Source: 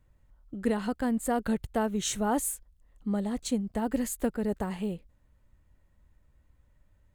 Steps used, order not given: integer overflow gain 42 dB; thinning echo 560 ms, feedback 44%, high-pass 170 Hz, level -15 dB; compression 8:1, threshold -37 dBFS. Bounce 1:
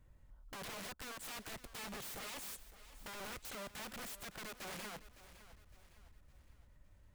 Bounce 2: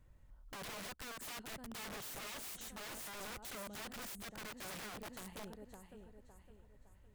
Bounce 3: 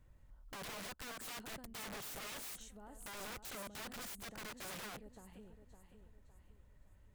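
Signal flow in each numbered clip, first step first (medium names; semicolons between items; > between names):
compression > integer overflow > thinning echo; thinning echo > compression > integer overflow; compression > thinning echo > integer overflow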